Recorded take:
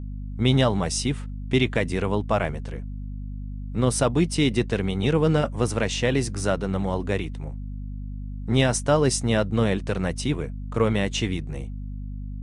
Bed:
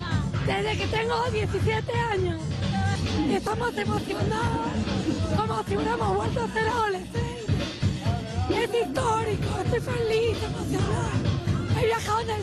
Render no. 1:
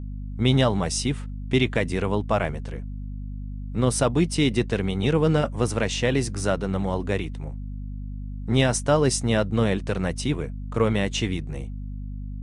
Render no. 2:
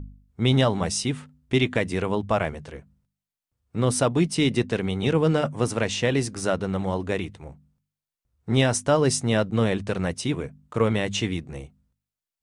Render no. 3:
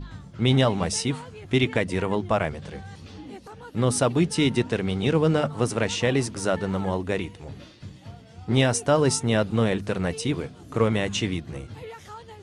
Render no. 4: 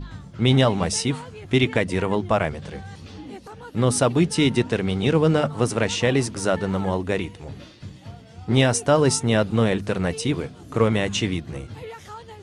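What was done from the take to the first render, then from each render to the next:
no processing that can be heard
hum removal 50 Hz, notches 5
mix in bed −16 dB
level +2.5 dB

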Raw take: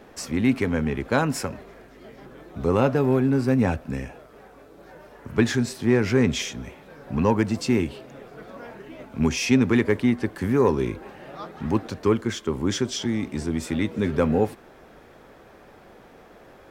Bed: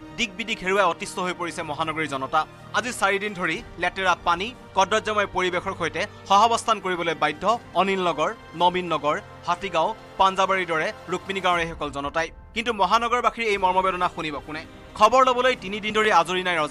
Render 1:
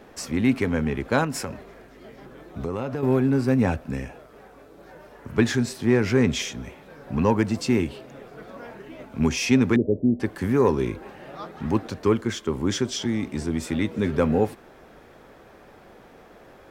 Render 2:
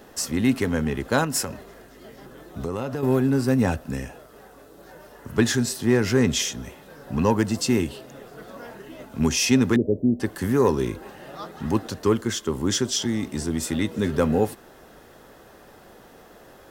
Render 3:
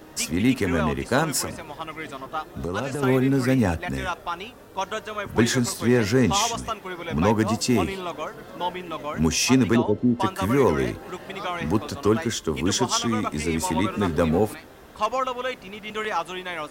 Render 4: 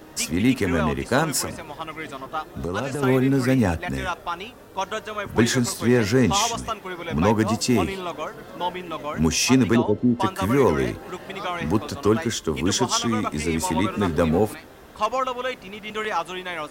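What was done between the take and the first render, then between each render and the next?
0:01.24–0:03.03: downward compressor 4 to 1, threshold −25 dBFS; 0:09.76–0:10.20: elliptic low-pass filter 630 Hz, stop band 50 dB
high-shelf EQ 5,300 Hz +12 dB; notch filter 2,300 Hz, Q 7.9
mix in bed −8.5 dB
level +1 dB

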